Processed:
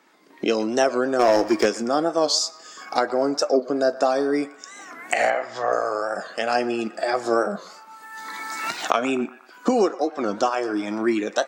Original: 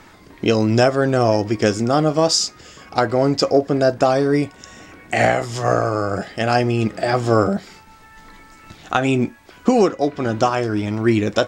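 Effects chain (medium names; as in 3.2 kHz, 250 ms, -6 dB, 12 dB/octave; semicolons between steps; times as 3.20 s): recorder AGC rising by 19 dB/s; 5.30–5.73 s: low-pass 3.3 kHz 12 dB/octave; spectral noise reduction 9 dB; high-pass 240 Hz 24 dB/octave; 1.19–1.66 s: waveshaping leveller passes 2; on a send: band-passed feedback delay 120 ms, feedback 57%, band-pass 1.3 kHz, level -15.5 dB; on the sum: warped record 45 rpm, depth 160 cents; trim -4 dB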